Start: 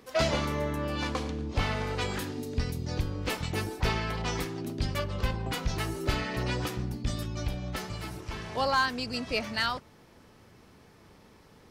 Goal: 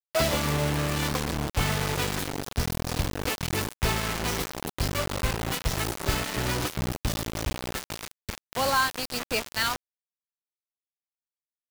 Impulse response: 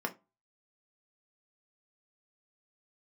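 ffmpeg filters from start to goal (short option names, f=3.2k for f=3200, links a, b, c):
-filter_complex "[0:a]asettb=1/sr,asplit=3[a][b][c];[a]atrim=end=0.444[d];[b]atrim=start=0.44:end=2.68,asetpts=PTS-STARTPTS,afade=t=in:d=0.004:c=qsin,afade=t=out:st=2.236:d=0.004:c=qsin,equalizer=f=150:w=6.7:g=8.5[e];[c]atrim=start=2.676[f];[d][e]acrossfade=d=0.004:c1=hsin:c2=qsin[g];[g][f]acrossfade=d=0.004:c1=qsin:c2=hsin,acrusher=bits=4:mix=0:aa=0.000001,volume=1.5dB"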